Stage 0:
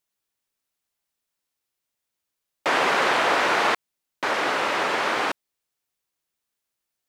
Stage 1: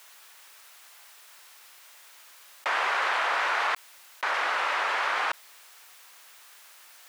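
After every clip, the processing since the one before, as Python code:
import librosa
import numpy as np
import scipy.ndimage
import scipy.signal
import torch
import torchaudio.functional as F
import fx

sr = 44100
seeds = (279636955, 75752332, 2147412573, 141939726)

y = scipy.signal.sosfilt(scipy.signal.butter(2, 1100.0, 'highpass', fs=sr, output='sos'), x)
y = fx.high_shelf(y, sr, hz=2200.0, db=-11.0)
y = fx.env_flatten(y, sr, amount_pct=70)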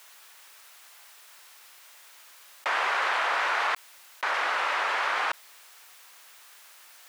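y = x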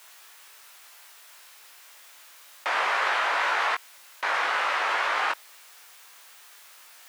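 y = fx.doubler(x, sr, ms=19.0, db=-4.0)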